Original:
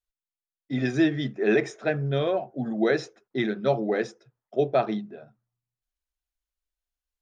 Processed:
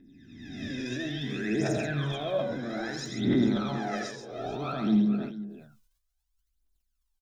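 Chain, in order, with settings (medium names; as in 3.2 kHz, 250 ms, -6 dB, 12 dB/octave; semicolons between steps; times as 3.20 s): reverse spectral sustain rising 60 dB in 1.06 s; graphic EQ 125/250/500/2000 Hz -3/+6/-10/-6 dB; peak limiter -22.5 dBFS, peak gain reduction 11 dB; phaser 0.6 Hz, delay 2.1 ms, feedback 77%; on a send: multi-tap echo 81/134/438 ms -8.5/-7.5/-16 dB; on the sum: decay stretcher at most 74 dB/s; trim -3 dB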